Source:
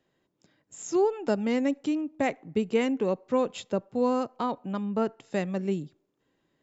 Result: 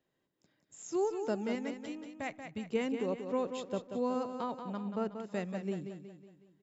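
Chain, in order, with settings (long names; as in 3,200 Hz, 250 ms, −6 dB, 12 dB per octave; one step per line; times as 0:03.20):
0:01.55–0:02.70: parametric band 400 Hz −12.5 dB 1.1 octaves
repeating echo 184 ms, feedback 47%, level −8 dB
level −8 dB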